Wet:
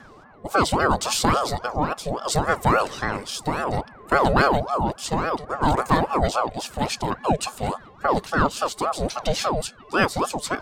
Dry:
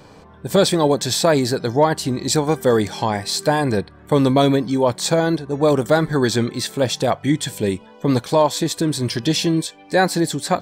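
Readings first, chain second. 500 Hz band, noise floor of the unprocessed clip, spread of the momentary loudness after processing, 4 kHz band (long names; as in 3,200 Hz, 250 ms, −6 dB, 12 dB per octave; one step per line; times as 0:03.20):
−7.0 dB, −45 dBFS, 8 LU, −6.0 dB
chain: steady tone 740 Hz −39 dBFS
rotating-speaker cabinet horn 0.65 Hz, later 5 Hz, at 0:06.50
ring modulator whose carrier an LFO sweeps 640 Hz, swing 55%, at 3.6 Hz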